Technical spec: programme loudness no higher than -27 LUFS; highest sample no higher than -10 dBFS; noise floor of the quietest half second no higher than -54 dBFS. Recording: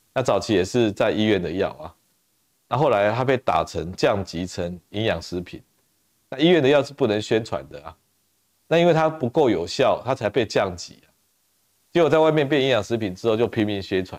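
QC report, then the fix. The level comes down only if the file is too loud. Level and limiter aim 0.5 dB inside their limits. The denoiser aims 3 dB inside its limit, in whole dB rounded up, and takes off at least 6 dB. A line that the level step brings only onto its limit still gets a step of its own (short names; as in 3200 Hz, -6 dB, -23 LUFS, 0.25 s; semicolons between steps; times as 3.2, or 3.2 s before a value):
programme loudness -21.5 LUFS: fail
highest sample -7.0 dBFS: fail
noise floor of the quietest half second -67 dBFS: OK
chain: gain -6 dB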